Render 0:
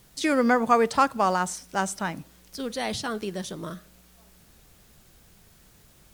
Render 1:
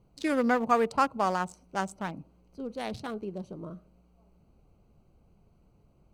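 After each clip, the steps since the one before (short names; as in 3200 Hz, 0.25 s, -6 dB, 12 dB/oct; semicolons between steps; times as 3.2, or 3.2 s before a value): Wiener smoothing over 25 samples; gain -4 dB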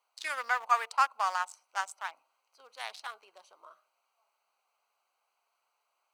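HPF 920 Hz 24 dB/oct; gain +1.5 dB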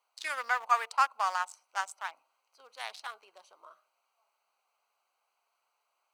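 nothing audible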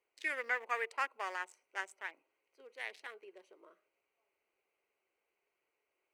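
EQ curve 220 Hz 0 dB, 380 Hz +10 dB, 730 Hz -14 dB, 1300 Hz -17 dB, 1900 Hz 0 dB, 4200 Hz -18 dB, 7800 Hz -15 dB; gain +4 dB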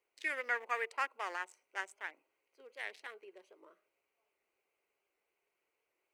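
record warp 78 rpm, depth 100 cents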